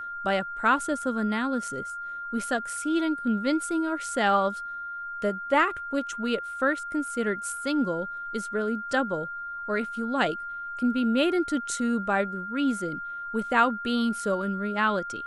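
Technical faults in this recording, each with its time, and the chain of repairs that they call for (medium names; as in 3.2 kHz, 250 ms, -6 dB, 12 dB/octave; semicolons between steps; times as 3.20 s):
whine 1.4 kHz -33 dBFS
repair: band-stop 1.4 kHz, Q 30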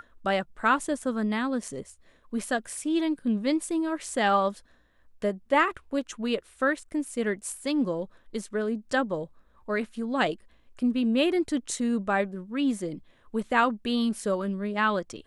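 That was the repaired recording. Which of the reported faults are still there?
nothing left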